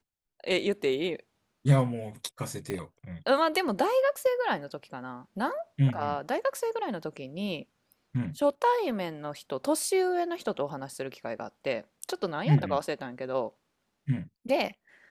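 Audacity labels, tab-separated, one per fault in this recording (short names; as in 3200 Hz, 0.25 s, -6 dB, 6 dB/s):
2.700000	2.700000	pop -19 dBFS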